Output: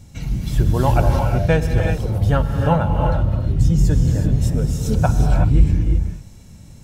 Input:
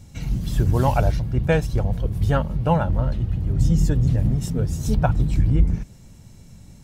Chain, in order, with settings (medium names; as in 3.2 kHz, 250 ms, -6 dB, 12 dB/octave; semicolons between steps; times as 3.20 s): gated-style reverb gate 400 ms rising, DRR 2.5 dB; trim +1.5 dB